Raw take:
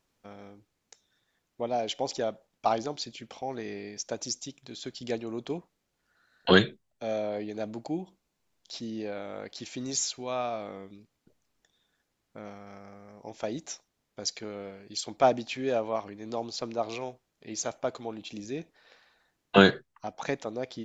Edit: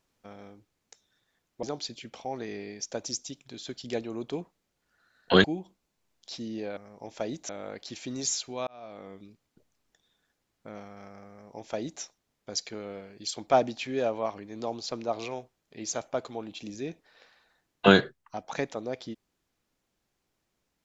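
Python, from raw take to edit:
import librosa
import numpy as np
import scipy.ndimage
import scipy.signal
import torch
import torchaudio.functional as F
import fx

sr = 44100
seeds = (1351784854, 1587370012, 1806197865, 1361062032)

y = fx.edit(x, sr, fx.cut(start_s=1.63, length_s=1.17),
    fx.cut(start_s=6.61, length_s=1.25),
    fx.fade_in_span(start_s=10.37, length_s=0.54),
    fx.duplicate(start_s=13.0, length_s=0.72, to_s=9.19), tone=tone)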